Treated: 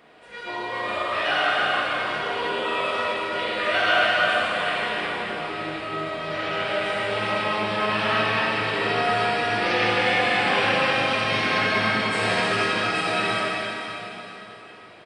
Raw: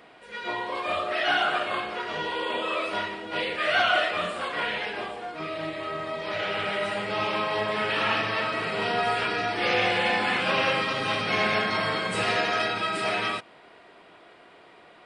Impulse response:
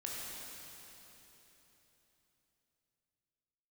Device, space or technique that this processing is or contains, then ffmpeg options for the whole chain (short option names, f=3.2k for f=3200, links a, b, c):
cave: -filter_complex "[0:a]aecho=1:1:313:0.398[a];[1:a]atrim=start_sample=2205[b];[a][b]afir=irnorm=-1:irlink=0,volume=2dB"